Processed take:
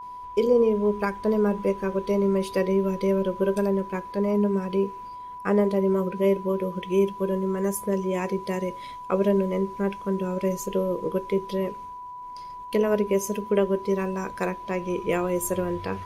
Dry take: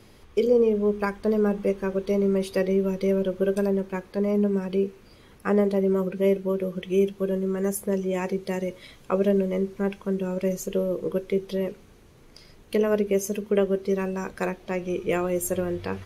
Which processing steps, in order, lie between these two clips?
expander -46 dBFS; whine 990 Hz -36 dBFS

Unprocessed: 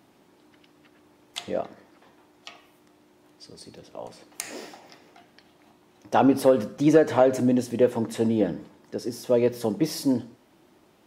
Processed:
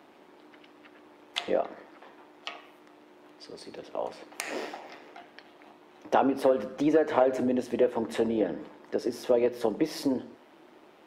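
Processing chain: compressor 2.5:1, threshold -29 dBFS, peak gain reduction 11.5 dB; AM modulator 150 Hz, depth 30%; three-band isolator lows -16 dB, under 260 Hz, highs -12 dB, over 3600 Hz; gain +8 dB

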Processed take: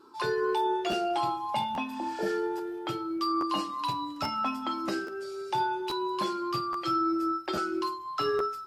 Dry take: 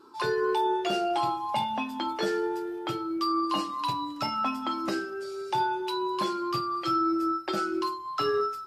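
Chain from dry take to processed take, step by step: 1.93–2.27 spectral repair 970–9200 Hz both; 7.3–8.04 crackle 60/s -52 dBFS; crackling interface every 0.83 s, samples 512, repeat, from 0.91; gain -1.5 dB

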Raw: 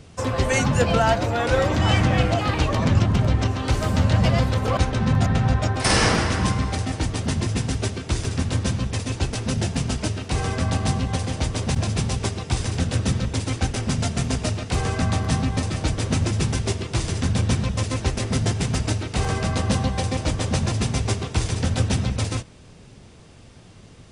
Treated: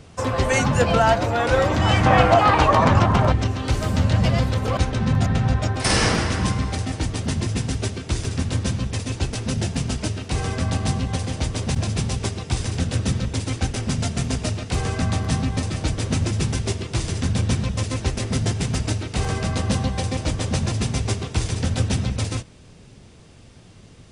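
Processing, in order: bell 970 Hz +3 dB 1.9 oct, from 2.06 s +13 dB, from 3.32 s -2 dB

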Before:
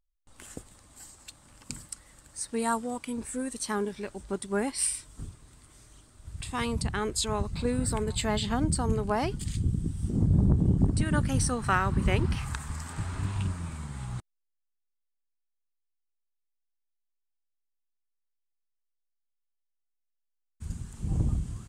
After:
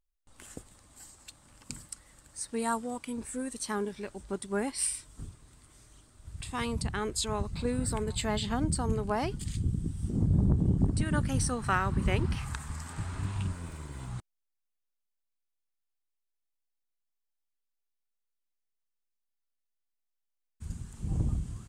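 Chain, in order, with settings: 13.52–14.08 minimum comb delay 2 ms; gain -2.5 dB

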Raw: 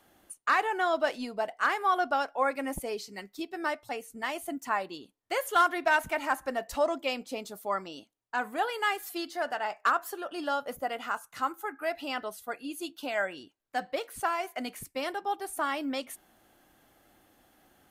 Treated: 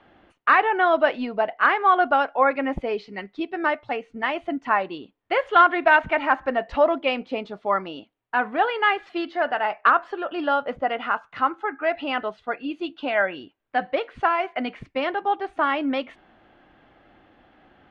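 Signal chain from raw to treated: LPF 3100 Hz 24 dB/oct; gain +8.5 dB

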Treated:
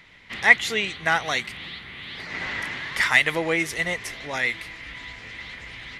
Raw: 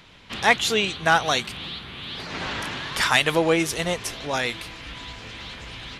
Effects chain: bell 2000 Hz +15 dB 0.34 oct; gain -5.5 dB

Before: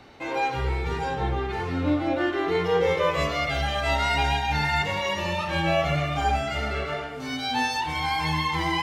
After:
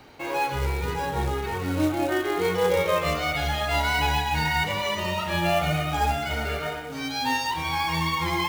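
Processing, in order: wide varispeed 1.04×; short-mantissa float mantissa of 2-bit

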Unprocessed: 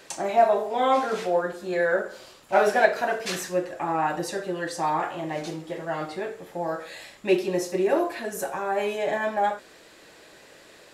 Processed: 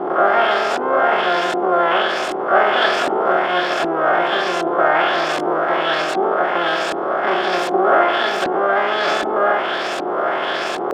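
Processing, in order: per-bin compression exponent 0.2; LFO low-pass saw up 1.3 Hz 310–3900 Hz; harmoniser +12 st -2 dB; gain -8 dB

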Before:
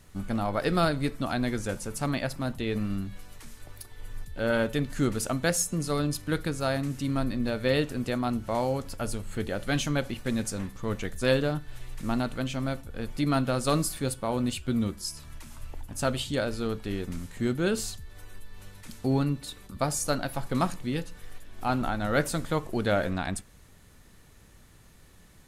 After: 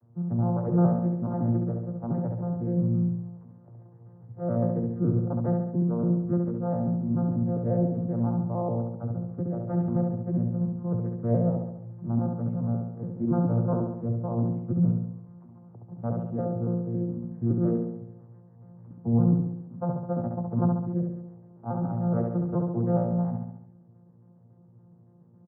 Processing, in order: arpeggiated vocoder bare fifth, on A#2, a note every 0.14 s; short-mantissa float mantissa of 4-bit; inverse Chebyshev low-pass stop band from 6000 Hz, stop band 80 dB; feedback echo 69 ms, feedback 56%, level -4 dB

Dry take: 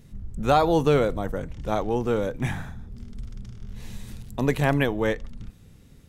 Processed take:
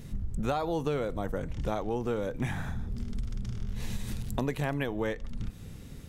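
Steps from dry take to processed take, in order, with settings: compressor 6:1, threshold -35 dBFS, peak gain reduction 19 dB; gain +6.5 dB

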